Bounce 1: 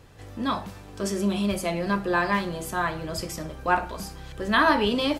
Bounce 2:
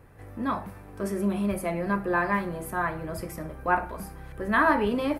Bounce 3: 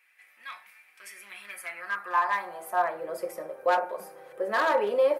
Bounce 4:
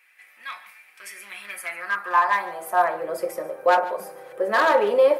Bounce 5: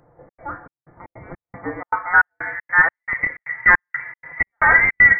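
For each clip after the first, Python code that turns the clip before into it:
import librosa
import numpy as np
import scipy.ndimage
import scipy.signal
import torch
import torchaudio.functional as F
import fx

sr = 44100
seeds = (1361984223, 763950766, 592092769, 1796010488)

y1 = fx.band_shelf(x, sr, hz=4700.0, db=-13.0, octaves=1.7)
y1 = y1 * librosa.db_to_amplitude(-1.5)
y2 = y1 + 0.47 * np.pad(y1, (int(5.5 * sr / 1000.0), 0))[:len(y1)]
y2 = np.clip(10.0 ** (18.0 / 20.0) * y2, -1.0, 1.0) / 10.0 ** (18.0 / 20.0)
y2 = fx.filter_sweep_highpass(y2, sr, from_hz=2300.0, to_hz=520.0, start_s=1.2, end_s=3.05, q=3.9)
y2 = y2 * librosa.db_to_amplitude(-4.5)
y3 = y2 + 10.0 ** (-17.5 / 20.0) * np.pad(y2, (int(144 * sr / 1000.0), 0))[:len(y2)]
y3 = y3 * librosa.db_to_amplitude(6.0)
y4 = fx.rattle_buzz(y3, sr, strikes_db=-37.0, level_db=-18.0)
y4 = fx.step_gate(y4, sr, bpm=156, pattern='xxx.xxx..xx.xx..', floor_db=-60.0, edge_ms=4.5)
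y4 = fx.freq_invert(y4, sr, carrier_hz=2500)
y4 = y4 * librosa.db_to_amplitude(5.0)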